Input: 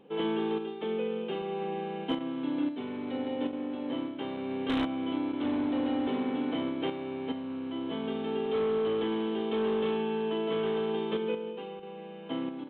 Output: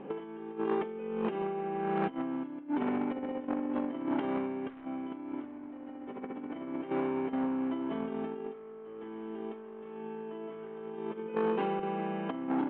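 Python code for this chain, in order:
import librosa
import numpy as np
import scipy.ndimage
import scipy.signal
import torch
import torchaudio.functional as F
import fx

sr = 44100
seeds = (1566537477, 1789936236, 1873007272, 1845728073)

y = scipy.signal.sosfilt(scipy.signal.butter(4, 2200.0, 'lowpass', fs=sr, output='sos'), x)
y = fx.peak_eq(y, sr, hz=85.0, db=-7.5, octaves=1.1)
y = fx.notch(y, sr, hz=490.0, q=12.0)
y = fx.over_compress(y, sr, threshold_db=-39.0, ratio=-0.5)
y = fx.transformer_sat(y, sr, knee_hz=750.0)
y = y * librosa.db_to_amplitude(6.0)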